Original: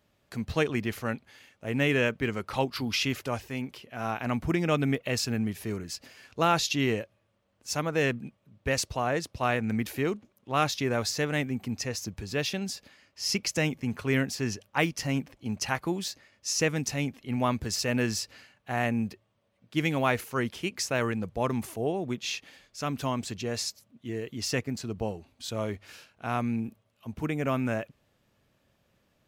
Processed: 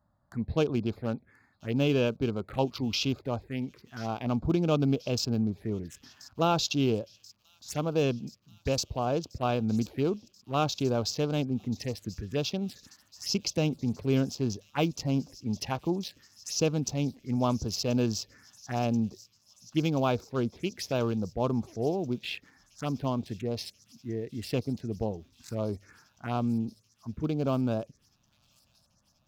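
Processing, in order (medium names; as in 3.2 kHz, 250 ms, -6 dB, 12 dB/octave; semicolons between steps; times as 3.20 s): local Wiener filter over 15 samples; touch-sensitive phaser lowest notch 410 Hz, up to 1.9 kHz, full sweep at -27.5 dBFS; on a send: feedback echo behind a high-pass 1033 ms, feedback 76%, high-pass 5.6 kHz, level -14 dB; on the sum: trim +1.5 dB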